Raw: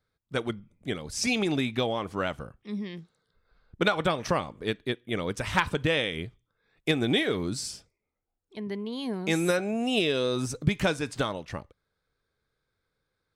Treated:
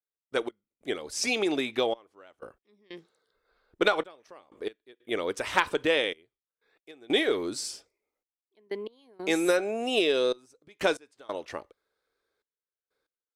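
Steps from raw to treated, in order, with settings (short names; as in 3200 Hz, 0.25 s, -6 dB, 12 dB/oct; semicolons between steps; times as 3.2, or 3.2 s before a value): step gate "..x..xxxxxxx." 93 bpm -24 dB; resonant low shelf 240 Hz -14 dB, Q 1.5; added harmonics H 2 -24 dB, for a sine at -7.5 dBFS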